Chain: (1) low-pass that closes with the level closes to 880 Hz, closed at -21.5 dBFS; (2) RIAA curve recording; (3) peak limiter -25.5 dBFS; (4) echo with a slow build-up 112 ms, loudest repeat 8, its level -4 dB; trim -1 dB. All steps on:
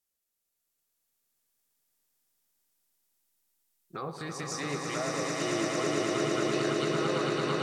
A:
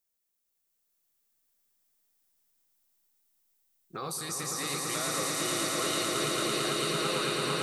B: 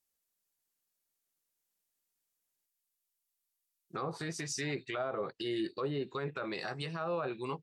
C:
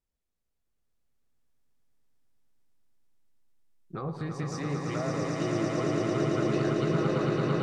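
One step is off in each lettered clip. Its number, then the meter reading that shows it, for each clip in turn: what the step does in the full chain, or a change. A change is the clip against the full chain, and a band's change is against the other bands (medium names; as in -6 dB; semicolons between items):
1, 8 kHz band +8.5 dB; 4, momentary loudness spread change -6 LU; 2, 125 Hz band +10.5 dB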